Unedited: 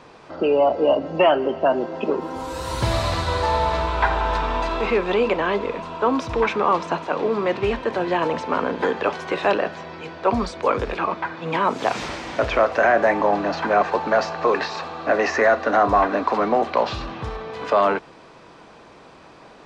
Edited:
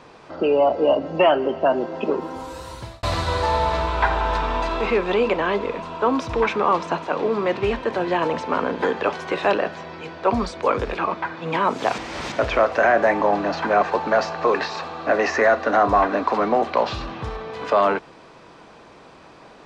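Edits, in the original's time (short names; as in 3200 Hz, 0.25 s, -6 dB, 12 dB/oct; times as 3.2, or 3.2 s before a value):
2.17–3.03 fade out
11.98–12.32 reverse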